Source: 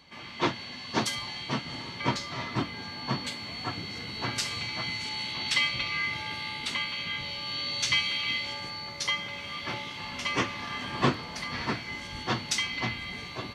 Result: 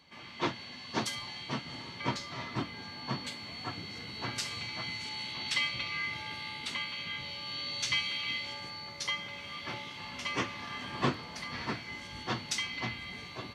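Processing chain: high-pass 52 Hz; trim -5 dB

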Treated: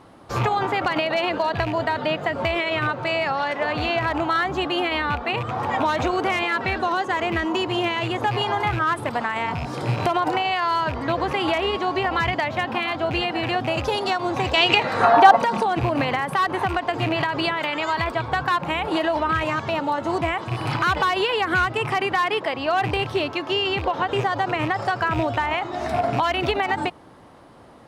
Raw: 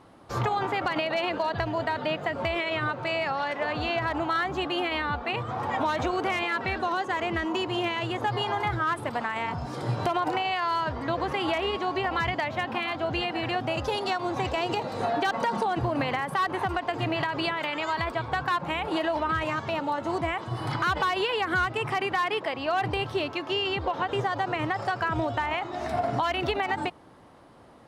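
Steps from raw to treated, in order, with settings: rattle on loud lows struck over -32 dBFS, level -28 dBFS; 14.53–15.35 s: peaking EQ 3.8 kHz -> 730 Hz +14.5 dB 1.3 oct; trim +5 dB

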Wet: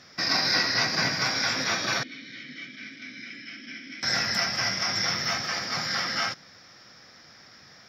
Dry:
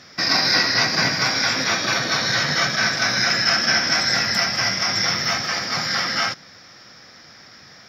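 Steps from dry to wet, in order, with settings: 2.03–4.03 s: vowel filter i; trim -6 dB

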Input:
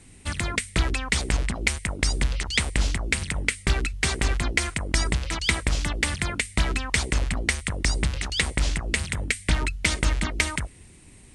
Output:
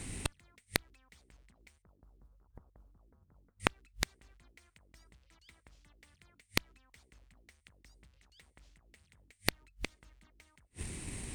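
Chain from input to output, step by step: tracing distortion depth 0.048 ms; 1.82–3.60 s: steep low-pass 1.3 kHz 48 dB/octave; in parallel at +2 dB: compression 10:1, threshold -29 dBFS, peak gain reduction 13.5 dB; on the sum: modulation noise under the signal 33 dB; inverted gate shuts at -20 dBFS, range -41 dB; Chebyshev shaper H 4 -7 dB, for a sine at -8 dBFS

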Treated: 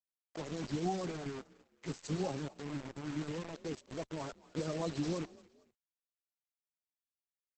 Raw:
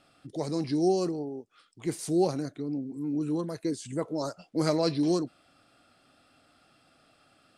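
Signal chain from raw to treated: coarse spectral quantiser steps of 30 dB; 1.25–2.48 s: comb 7.3 ms, depth 70%; in parallel at -9 dB: hard clipper -28.5 dBFS, distortion -8 dB; on the sum: harmonic tremolo 9.4 Hz, depth 70%, crossover 400 Hz; bit crusher 6-bit; on a send: frequency-shifting echo 228 ms, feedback 33%, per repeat +39 Hz, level -21 dB; on the sum: trim -7 dB; Opus 12 kbps 48 kHz

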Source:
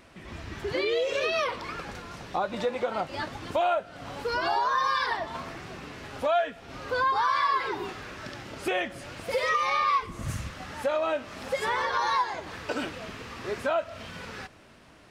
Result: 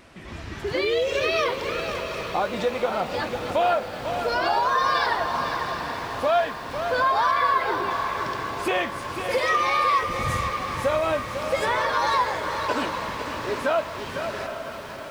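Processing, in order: 7.31–7.91 s: low-pass 3.3 kHz; echo that smears into a reverb 792 ms, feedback 57%, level -9 dB; bit-crushed delay 500 ms, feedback 35%, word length 8-bit, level -8 dB; trim +3.5 dB

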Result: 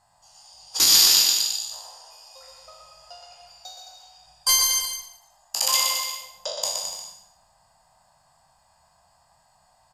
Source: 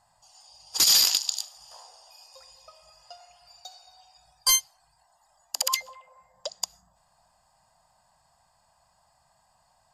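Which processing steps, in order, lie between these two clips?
spectral sustain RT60 0.69 s; on a send: bouncing-ball echo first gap 120 ms, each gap 0.8×, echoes 5

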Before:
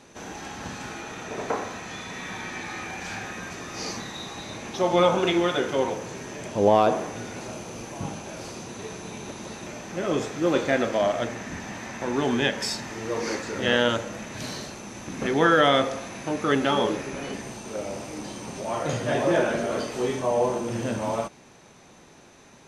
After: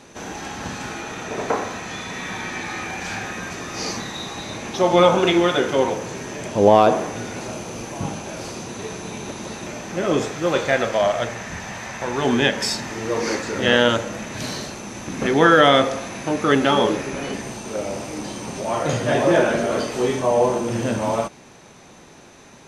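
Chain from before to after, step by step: 10.34–12.25 s: peaking EQ 280 Hz -9.5 dB 0.88 oct; trim +5.5 dB

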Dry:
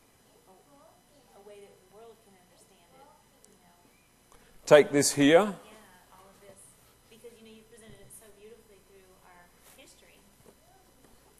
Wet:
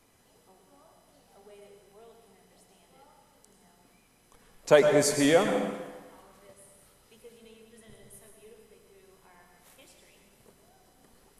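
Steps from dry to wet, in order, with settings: plate-style reverb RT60 1.3 s, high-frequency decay 0.8×, pre-delay 90 ms, DRR 4.5 dB; trim -2 dB

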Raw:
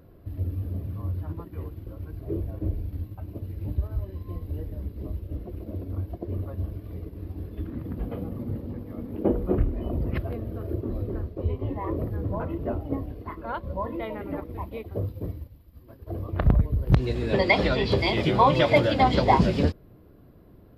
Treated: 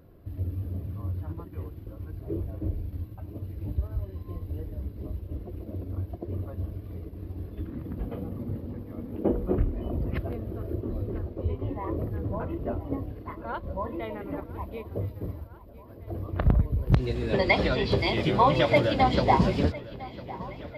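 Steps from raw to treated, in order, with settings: filtered feedback delay 1004 ms, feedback 68%, low-pass 4.8 kHz, level -18 dB; trim -2 dB

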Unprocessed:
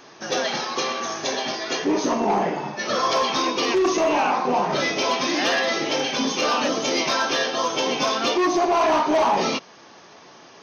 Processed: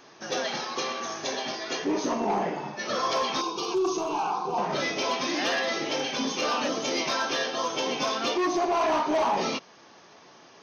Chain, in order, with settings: 3.41–4.58 s: static phaser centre 380 Hz, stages 8; trim -5.5 dB

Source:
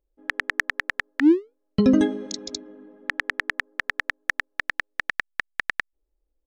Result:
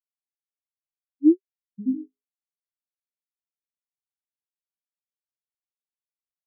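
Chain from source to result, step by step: steep low-pass 1.5 kHz; spectral contrast expander 4:1

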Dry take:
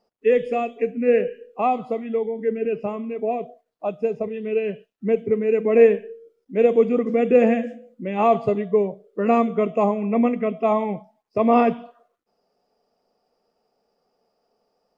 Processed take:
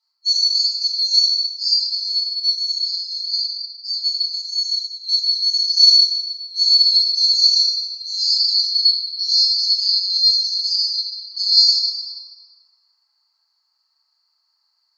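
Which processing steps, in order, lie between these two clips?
split-band scrambler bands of 4 kHz; high-pass 1.3 kHz 12 dB/octave; reverberation RT60 2.6 s, pre-delay 3 ms, DRR -12 dB; trim -9.5 dB

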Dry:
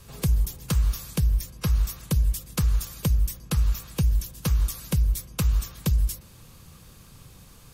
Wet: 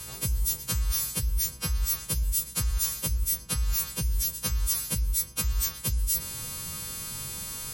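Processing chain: partials quantised in pitch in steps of 2 st; reverse; compression 6:1, threshold -34 dBFS, peak gain reduction 15 dB; reverse; trim +8.5 dB

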